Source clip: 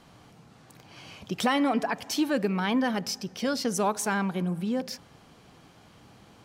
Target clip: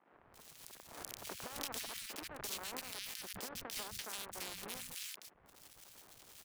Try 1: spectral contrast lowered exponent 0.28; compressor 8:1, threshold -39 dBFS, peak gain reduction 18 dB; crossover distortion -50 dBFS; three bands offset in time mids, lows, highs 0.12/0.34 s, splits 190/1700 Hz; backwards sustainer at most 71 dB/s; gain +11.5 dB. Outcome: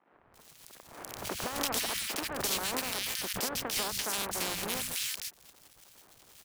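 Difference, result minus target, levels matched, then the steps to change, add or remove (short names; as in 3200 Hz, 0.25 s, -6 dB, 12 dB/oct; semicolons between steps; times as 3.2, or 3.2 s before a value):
compressor: peak gain reduction -8 dB
change: compressor 8:1, threshold -48 dBFS, peak gain reduction 26 dB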